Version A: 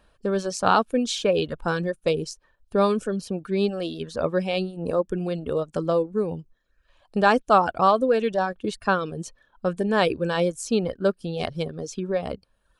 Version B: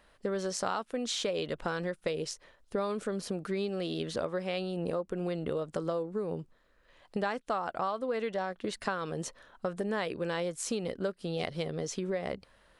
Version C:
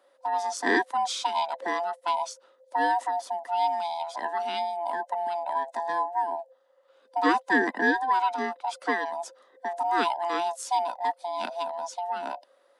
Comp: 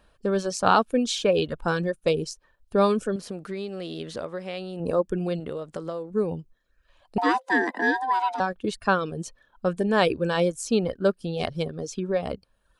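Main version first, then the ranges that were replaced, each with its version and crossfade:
A
0:03.16–0:04.80: punch in from B
0:05.40–0:06.10: punch in from B
0:07.18–0:08.40: punch in from C

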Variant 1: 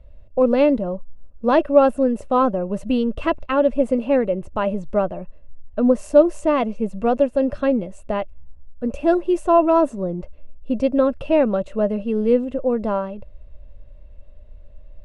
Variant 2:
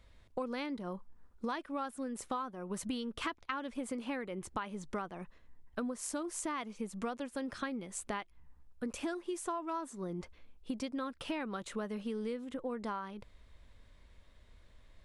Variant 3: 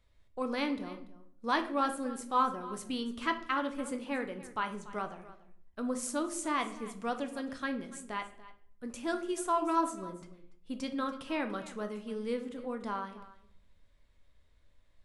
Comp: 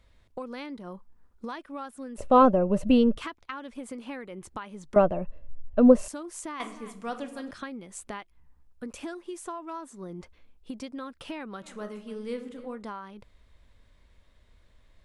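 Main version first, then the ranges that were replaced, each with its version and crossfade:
2
0:02.18–0:03.17: punch in from 1
0:04.96–0:06.08: punch in from 1
0:06.60–0:07.51: punch in from 3
0:11.67–0:12.76: punch in from 3, crossfade 0.16 s

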